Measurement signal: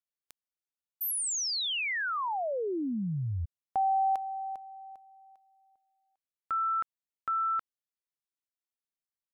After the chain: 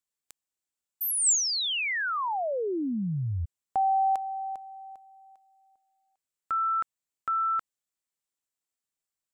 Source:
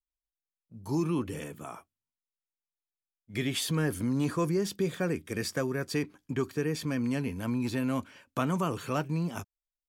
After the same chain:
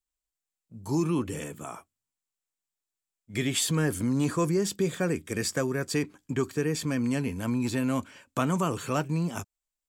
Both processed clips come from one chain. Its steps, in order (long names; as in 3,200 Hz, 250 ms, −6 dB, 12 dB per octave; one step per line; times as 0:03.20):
parametric band 7,600 Hz +9 dB 0.35 octaves
level +2.5 dB